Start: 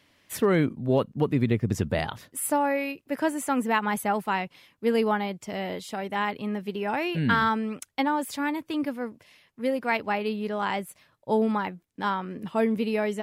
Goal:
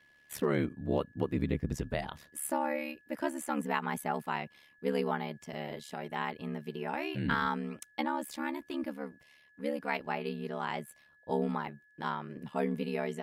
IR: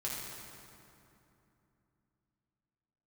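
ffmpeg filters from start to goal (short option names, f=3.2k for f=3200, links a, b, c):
-af "aeval=exprs='val(0)*sin(2*PI*36*n/s)':c=same,aeval=exprs='val(0)+0.00141*sin(2*PI*1700*n/s)':c=same,volume=-5dB"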